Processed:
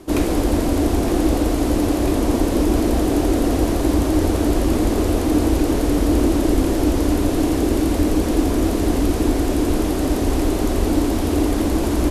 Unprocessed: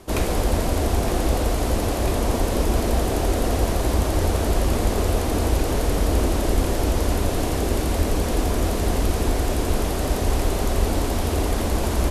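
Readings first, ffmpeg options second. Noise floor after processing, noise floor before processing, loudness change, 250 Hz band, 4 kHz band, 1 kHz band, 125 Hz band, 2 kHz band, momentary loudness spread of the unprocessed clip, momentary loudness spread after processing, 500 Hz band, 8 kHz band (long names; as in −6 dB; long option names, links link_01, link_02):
−21 dBFS, −24 dBFS, +4.0 dB, +9.0 dB, 0.0 dB, +0.5 dB, +0.5 dB, 0.0 dB, 2 LU, 2 LU, +3.5 dB, 0.0 dB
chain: -af "equalizer=frequency=300:width=2.7:gain=13"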